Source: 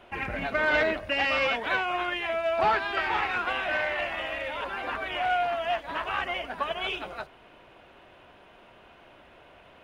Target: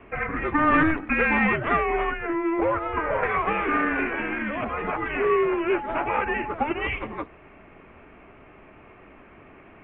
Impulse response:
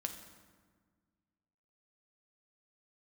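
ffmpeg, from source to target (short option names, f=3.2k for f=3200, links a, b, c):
-filter_complex "[0:a]asettb=1/sr,asplit=3[a][b][c];[a]atrim=end=2.114[d];[b]atrim=start=2.11:end=3.23,asetpts=PTS-STARTPTS,afade=t=in:d=0.004:c=qsin,afade=t=out:st=1.116:d=0.004:c=qsin,acrossover=split=630|1900[e][f][g];[e]acompressor=threshold=-39dB:ratio=4[h];[f]acompressor=threshold=-27dB:ratio=4[i];[g]acompressor=threshold=-48dB:ratio=4[j];[h][i][j]amix=inputs=3:normalize=0[k];[c]atrim=start=3.226[l];[d][k]acrossfade=d=0.004:c1=hsin:c2=qsin[m];[m][l]acrossfade=d=0.004:c1=qsin:c2=hsin,highpass=f=220:t=q:w=0.5412,highpass=f=220:t=q:w=1.307,lowpass=f=2.9k:t=q:w=0.5176,lowpass=f=2.9k:t=q:w=0.7071,lowpass=f=2.9k:t=q:w=1.932,afreqshift=-320,asettb=1/sr,asplit=3[n][o][p];[n]atrim=end=5.754[q];[o]atrim=start=5.75:end=6.54,asetpts=PTS-STARTPTS,afade=t=in:d=0.004:c=qsin,afade=t=out:st=0.786:d=0.004:c=qsin,aeval=exprs='val(0)+0.0158*sin(2*PI*850*n/s)':c=same[r];[p]atrim=start=6.536[s];[q][r]acrossfade=d=0.004:c1=hsin:c2=qsin[t];[t][s]acrossfade=d=0.004:c1=qsin:c2=hsin,volume=5dB"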